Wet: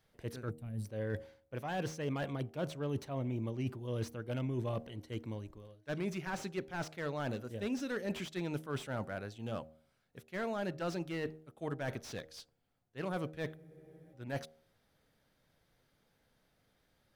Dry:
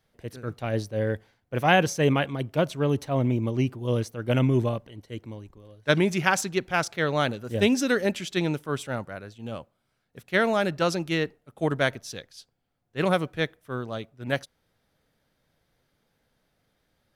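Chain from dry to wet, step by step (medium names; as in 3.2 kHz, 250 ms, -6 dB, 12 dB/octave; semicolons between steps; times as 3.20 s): reverse; compression 8:1, threshold -31 dBFS, peak gain reduction 16.5 dB; reverse; time-frequency box 0.50–0.85 s, 240–7300 Hz -17 dB; de-hum 78.29 Hz, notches 10; in parallel at -4.5 dB: saturation -26 dBFS, distortion -19 dB; on the sum: spectral freeze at 13.59 s, 0.54 s; slew-rate limiter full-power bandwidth 47 Hz; trim -6 dB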